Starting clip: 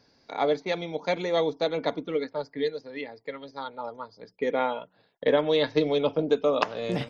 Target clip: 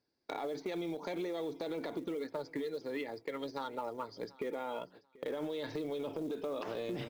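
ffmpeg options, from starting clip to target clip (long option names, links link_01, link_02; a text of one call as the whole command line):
ffmpeg -i in.wav -af "agate=range=-26dB:threshold=-54dB:ratio=16:detection=peak,equalizer=frequency=350:width=4.4:gain=10.5,alimiter=level_in=1.5dB:limit=-24dB:level=0:latency=1:release=57,volume=-1.5dB,acompressor=threshold=-38dB:ratio=8,asoftclip=type=tanh:threshold=-31.5dB,acrusher=bits=7:mode=log:mix=0:aa=0.000001,aecho=1:1:737|1474:0.0841|0.0177,volume=4dB" out.wav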